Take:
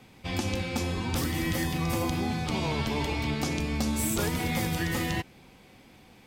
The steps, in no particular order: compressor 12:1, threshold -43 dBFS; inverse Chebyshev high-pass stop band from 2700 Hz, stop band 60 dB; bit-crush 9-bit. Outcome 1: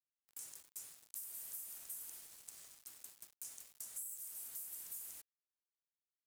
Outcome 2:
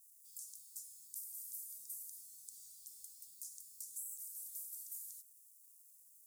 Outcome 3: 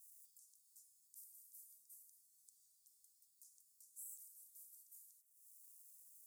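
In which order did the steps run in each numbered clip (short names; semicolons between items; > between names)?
inverse Chebyshev high-pass > bit-crush > compressor; bit-crush > inverse Chebyshev high-pass > compressor; bit-crush > compressor > inverse Chebyshev high-pass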